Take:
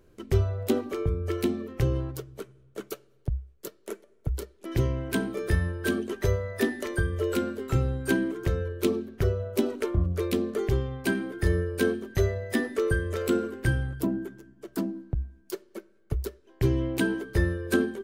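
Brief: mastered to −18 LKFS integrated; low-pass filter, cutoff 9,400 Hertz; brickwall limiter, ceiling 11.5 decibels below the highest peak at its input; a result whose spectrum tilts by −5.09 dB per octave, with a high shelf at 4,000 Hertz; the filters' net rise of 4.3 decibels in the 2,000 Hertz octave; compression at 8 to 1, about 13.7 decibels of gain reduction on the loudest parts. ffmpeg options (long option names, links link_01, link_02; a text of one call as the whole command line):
ffmpeg -i in.wav -af "lowpass=9400,equalizer=frequency=2000:width_type=o:gain=7,highshelf=frequency=4000:gain=-6.5,acompressor=threshold=-33dB:ratio=8,volume=23.5dB,alimiter=limit=-8dB:level=0:latency=1" out.wav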